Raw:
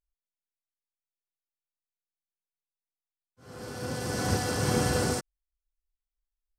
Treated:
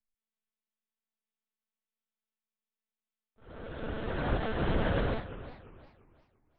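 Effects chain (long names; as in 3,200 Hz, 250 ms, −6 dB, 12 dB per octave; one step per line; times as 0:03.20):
one-pitch LPC vocoder at 8 kHz 220 Hz
pitch vibrato 1.2 Hz 6.1 cents
feedback echo with a swinging delay time 350 ms, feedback 33%, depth 215 cents, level −14 dB
level −2 dB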